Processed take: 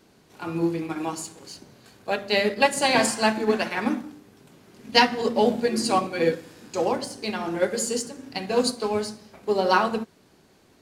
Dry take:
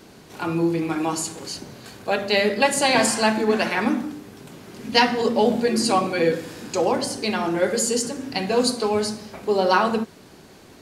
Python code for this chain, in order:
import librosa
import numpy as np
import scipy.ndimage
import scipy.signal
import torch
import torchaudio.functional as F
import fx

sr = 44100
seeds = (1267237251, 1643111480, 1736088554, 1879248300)

p1 = np.sign(x) * np.maximum(np.abs(x) - 10.0 ** (-34.0 / 20.0), 0.0)
p2 = x + (p1 * librosa.db_to_amplitude(-8.0))
p3 = fx.upward_expand(p2, sr, threshold_db=-27.0, expansion=1.5)
y = p3 * librosa.db_to_amplitude(-2.5)